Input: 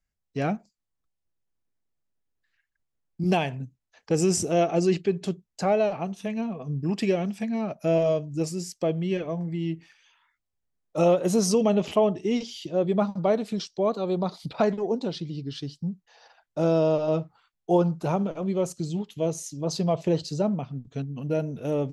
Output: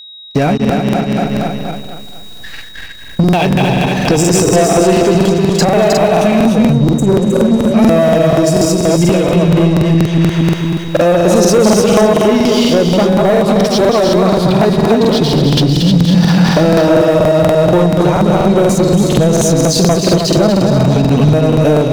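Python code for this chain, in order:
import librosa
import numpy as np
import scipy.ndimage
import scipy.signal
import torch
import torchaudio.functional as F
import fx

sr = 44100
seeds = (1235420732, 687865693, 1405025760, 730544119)

p1 = fx.reverse_delay_fb(x, sr, ms=117, feedback_pct=57, wet_db=-4.0)
p2 = fx.recorder_agc(p1, sr, target_db=-13.5, rise_db_per_s=53.0, max_gain_db=30)
p3 = fx.spec_erase(p2, sr, start_s=6.42, length_s=1.32, low_hz=620.0, high_hz=5900.0)
p4 = fx.leveller(p3, sr, passes=3)
p5 = np.clip(10.0 ** (18.5 / 20.0) * p4, -1.0, 1.0) / 10.0 ** (18.5 / 20.0)
p6 = p4 + (p5 * librosa.db_to_amplitude(-5.0))
p7 = p6 + 10.0 ** (-30.0 / 20.0) * np.sin(2.0 * np.pi * 3800.0 * np.arange(len(p6)) / sr)
p8 = p7 + fx.echo_single(p7, sr, ms=313, db=-5.5, dry=0)
p9 = fx.buffer_crackle(p8, sr, first_s=0.6, period_s=0.24, block=2048, kind='repeat')
y = p9 * librosa.db_to_amplitude(-1.0)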